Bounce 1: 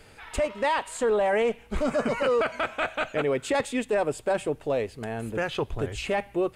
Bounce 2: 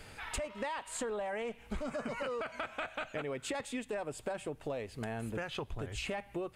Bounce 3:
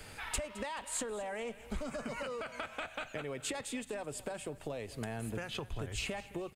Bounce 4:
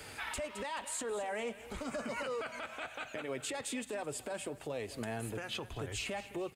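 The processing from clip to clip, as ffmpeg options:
-af "equalizer=f=420:t=o:w=0.96:g=-4,acompressor=threshold=0.0158:ratio=10,volume=1.12"
-filter_complex "[0:a]acrossover=split=170|3000[s0][s1][s2];[s1]acompressor=threshold=0.01:ratio=2.5[s3];[s0][s3][s2]amix=inputs=3:normalize=0,highshelf=f=6900:g=6,aecho=1:1:215|430|645:0.126|0.0529|0.0222,volume=1.12"
-af "highpass=f=140:p=1,alimiter=level_in=2.51:limit=0.0631:level=0:latency=1:release=51,volume=0.398,flanger=delay=2.1:depth=1.5:regen=-63:speed=1.7:shape=triangular,volume=2.24"

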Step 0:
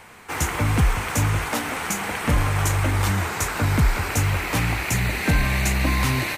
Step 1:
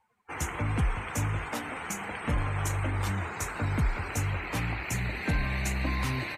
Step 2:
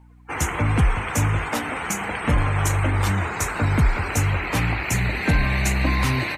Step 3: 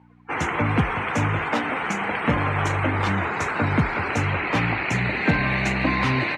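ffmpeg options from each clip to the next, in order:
-af "afftdn=nr=26:nf=-36,volume=0.376"
-af "aeval=exprs='val(0)+0.00141*(sin(2*PI*60*n/s)+sin(2*PI*2*60*n/s)/2+sin(2*PI*3*60*n/s)/3+sin(2*PI*4*60*n/s)/4+sin(2*PI*5*60*n/s)/5)':c=same,volume=2.82"
-af "highpass=140,lowpass=3400,volume=1.33"

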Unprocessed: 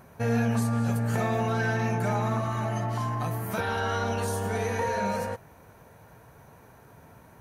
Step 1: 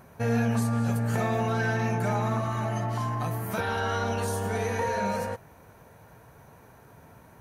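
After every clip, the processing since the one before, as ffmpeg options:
-af anull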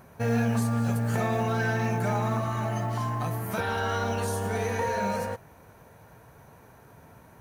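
-af "acrusher=bits=8:mode=log:mix=0:aa=0.000001"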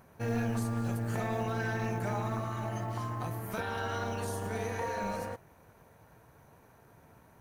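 -af "tremolo=f=220:d=0.571,volume=0.631"

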